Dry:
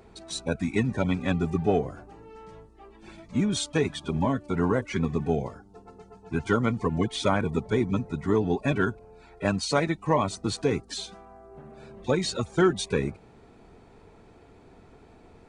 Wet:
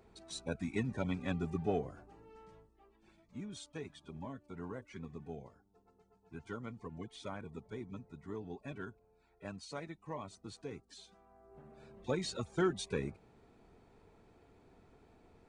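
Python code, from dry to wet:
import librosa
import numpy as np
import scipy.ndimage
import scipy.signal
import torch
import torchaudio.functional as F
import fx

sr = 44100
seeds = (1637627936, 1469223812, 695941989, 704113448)

y = fx.gain(x, sr, db=fx.line((2.39, -10.5), (3.17, -20.0), (11.01, -20.0), (11.56, -10.5)))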